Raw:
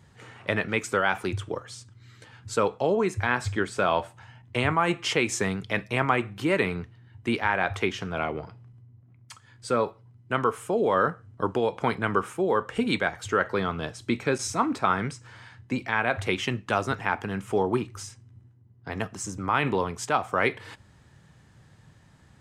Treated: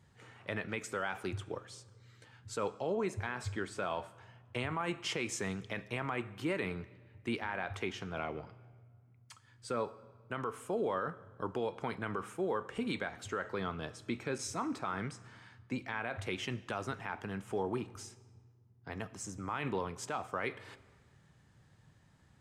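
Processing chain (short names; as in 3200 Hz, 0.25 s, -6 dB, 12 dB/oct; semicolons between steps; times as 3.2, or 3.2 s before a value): limiter -16 dBFS, peak gain reduction 8 dB; digital reverb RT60 1.6 s, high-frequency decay 0.8×, pre-delay 30 ms, DRR 18.5 dB; gain -9 dB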